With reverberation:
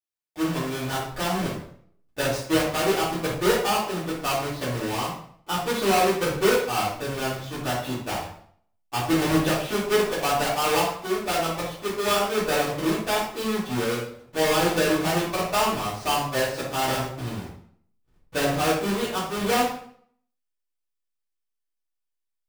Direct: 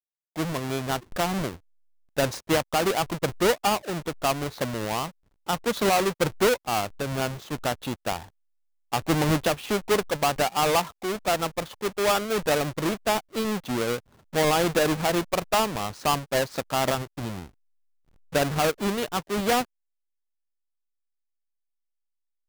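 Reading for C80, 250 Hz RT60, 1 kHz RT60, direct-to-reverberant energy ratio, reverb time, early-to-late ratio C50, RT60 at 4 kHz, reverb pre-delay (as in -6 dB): 7.5 dB, 0.65 s, 0.55 s, -9.5 dB, 0.60 s, 3.0 dB, 0.50 s, 3 ms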